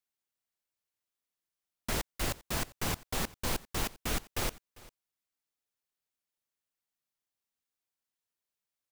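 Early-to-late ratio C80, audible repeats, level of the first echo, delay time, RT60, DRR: no reverb, 1, -21.5 dB, 398 ms, no reverb, no reverb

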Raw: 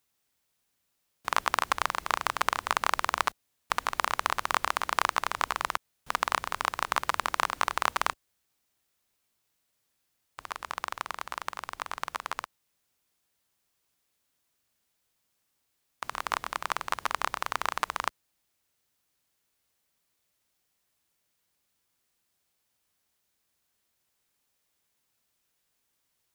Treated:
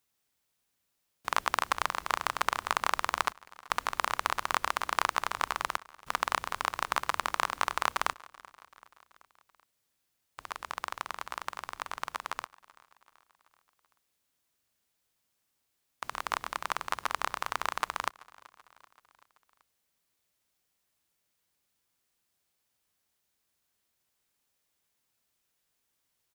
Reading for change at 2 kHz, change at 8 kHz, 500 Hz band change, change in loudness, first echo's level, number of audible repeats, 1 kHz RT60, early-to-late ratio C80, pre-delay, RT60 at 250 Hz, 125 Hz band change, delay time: -2.0 dB, -2.0 dB, -2.0 dB, -2.0 dB, -23.0 dB, 3, no reverb, no reverb, no reverb, no reverb, -2.0 dB, 383 ms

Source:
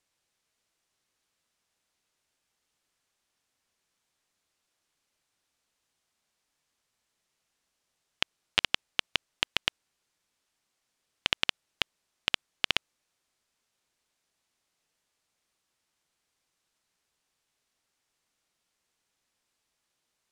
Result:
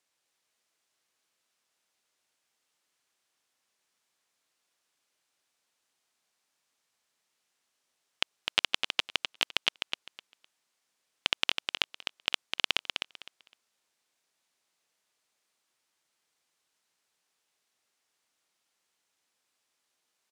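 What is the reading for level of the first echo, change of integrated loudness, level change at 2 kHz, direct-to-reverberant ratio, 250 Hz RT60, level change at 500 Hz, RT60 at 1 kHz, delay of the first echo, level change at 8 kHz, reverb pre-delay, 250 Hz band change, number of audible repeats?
-6.0 dB, 0.0 dB, 0.0 dB, no reverb, no reverb, 0.0 dB, no reverb, 255 ms, +1.0 dB, no reverb, -2.5 dB, 3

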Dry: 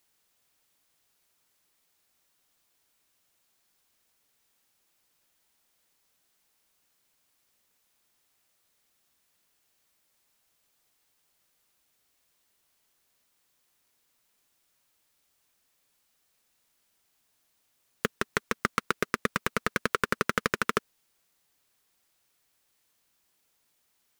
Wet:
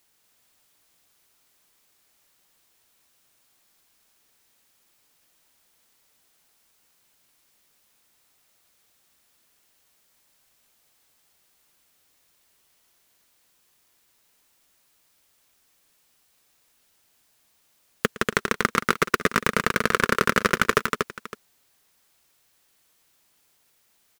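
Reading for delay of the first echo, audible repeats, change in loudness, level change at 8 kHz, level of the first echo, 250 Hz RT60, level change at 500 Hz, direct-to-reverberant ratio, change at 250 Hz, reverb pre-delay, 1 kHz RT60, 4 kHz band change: 112 ms, 4, +6.5 dB, +7.0 dB, -18.5 dB, no reverb, +7.5 dB, no reverb, +7.0 dB, no reverb, no reverb, +7.5 dB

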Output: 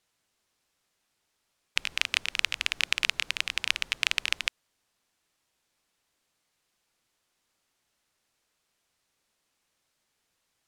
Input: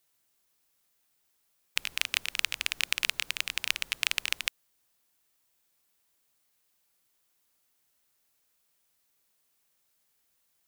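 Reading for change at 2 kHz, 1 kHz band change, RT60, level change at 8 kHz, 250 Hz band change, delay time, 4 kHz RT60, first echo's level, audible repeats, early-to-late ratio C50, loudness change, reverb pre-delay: +3.0 dB, +3.0 dB, no reverb, -1.5 dB, +3.5 dB, no echo, no reverb, no echo, no echo, no reverb, +2.0 dB, no reverb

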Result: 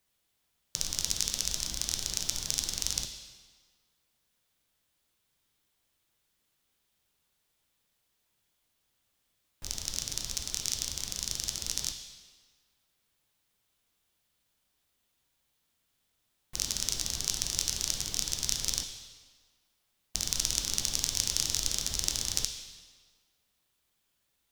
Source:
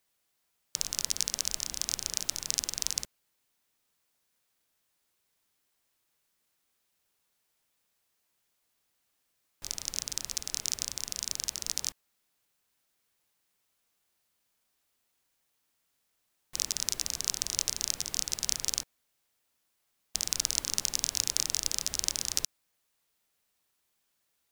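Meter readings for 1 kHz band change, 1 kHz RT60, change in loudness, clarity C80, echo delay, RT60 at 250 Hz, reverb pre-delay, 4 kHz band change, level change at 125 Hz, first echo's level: 0.0 dB, 1.6 s, 0.0 dB, 8.5 dB, no echo, 1.4 s, 8 ms, +1.0 dB, +7.0 dB, no echo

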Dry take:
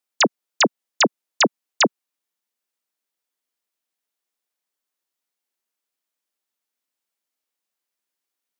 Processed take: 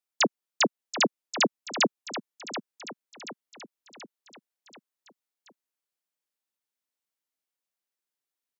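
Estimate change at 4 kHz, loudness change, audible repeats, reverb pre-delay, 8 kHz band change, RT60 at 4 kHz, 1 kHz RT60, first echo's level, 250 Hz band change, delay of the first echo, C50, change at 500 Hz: -6.0 dB, -7.5 dB, 5, no reverb, -6.0 dB, no reverb, no reverb, -11.5 dB, -6.0 dB, 731 ms, no reverb, -6.0 dB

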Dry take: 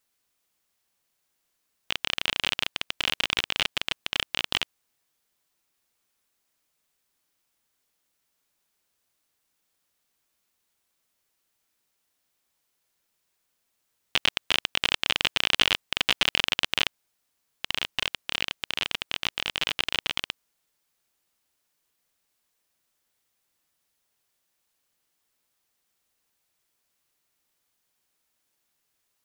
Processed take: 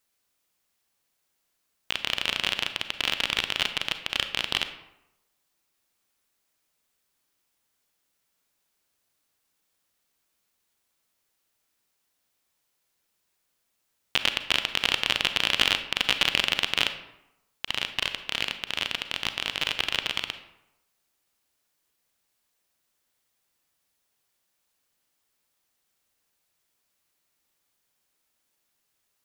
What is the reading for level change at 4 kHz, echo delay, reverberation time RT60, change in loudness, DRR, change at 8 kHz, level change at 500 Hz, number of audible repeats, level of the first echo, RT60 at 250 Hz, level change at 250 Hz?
+0.5 dB, no echo, 0.90 s, +0.5 dB, 9.0 dB, 0.0 dB, +0.5 dB, no echo, no echo, 0.85 s, +0.5 dB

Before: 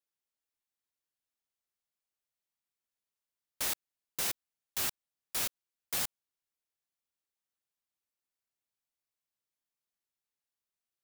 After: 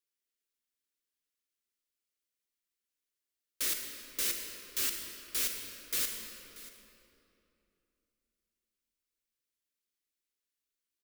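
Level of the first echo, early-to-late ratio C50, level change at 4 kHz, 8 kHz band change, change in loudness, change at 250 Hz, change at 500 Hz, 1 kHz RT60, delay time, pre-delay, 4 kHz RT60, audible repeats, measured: -18.0 dB, 3.5 dB, +2.0 dB, +2.0 dB, +1.5 dB, +0.5 dB, -1.0 dB, 2.8 s, 634 ms, 34 ms, 2.0 s, 1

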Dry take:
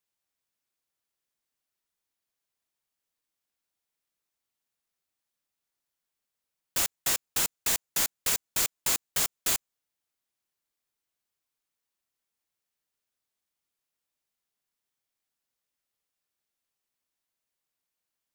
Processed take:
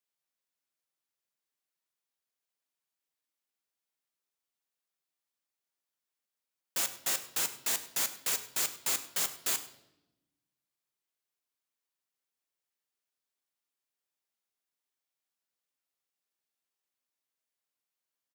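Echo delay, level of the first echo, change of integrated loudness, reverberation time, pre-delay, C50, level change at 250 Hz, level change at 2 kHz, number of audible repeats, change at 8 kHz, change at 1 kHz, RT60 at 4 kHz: 100 ms, -18.5 dB, -4.0 dB, 0.90 s, 8 ms, 12.5 dB, -6.0 dB, -4.0 dB, 1, -4.0 dB, -4.0 dB, 0.75 s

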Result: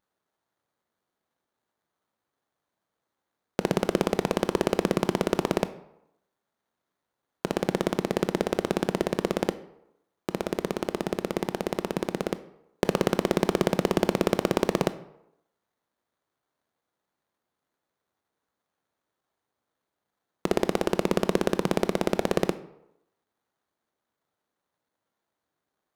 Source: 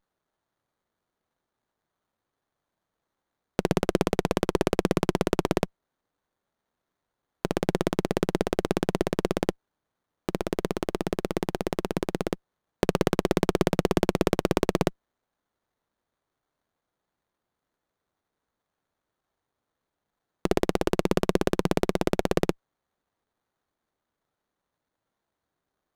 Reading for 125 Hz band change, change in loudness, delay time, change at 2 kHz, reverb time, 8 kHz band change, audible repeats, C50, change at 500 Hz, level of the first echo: -2.0 dB, -0.5 dB, no echo, 0.0 dB, 0.85 s, 0.0 dB, no echo, 15.0 dB, 0.0 dB, no echo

